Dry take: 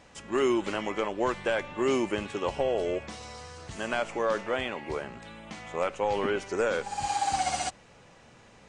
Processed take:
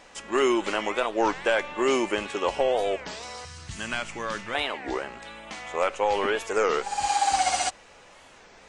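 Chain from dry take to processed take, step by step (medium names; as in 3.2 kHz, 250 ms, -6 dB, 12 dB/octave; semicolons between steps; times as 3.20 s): peaking EQ 110 Hz -14.5 dB 2.1 oct, from 3.45 s 530 Hz, from 4.55 s 130 Hz; warped record 33 1/3 rpm, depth 250 cents; trim +6 dB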